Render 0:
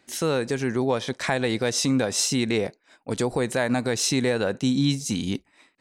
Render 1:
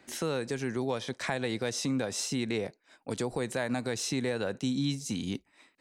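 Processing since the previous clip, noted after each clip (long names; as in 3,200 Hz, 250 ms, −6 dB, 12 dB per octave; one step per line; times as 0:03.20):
multiband upward and downward compressor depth 40%
level −8 dB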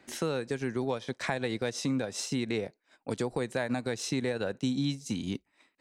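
high-shelf EQ 7,000 Hz −4.5 dB
transient designer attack +2 dB, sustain −6 dB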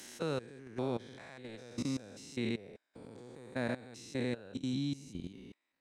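spectrum averaged block by block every 200 ms
output level in coarse steps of 17 dB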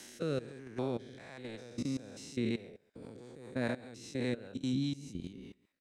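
single-tap delay 136 ms −22 dB
rotating-speaker cabinet horn 1.2 Hz, later 5 Hz, at 0:02.03
level +3 dB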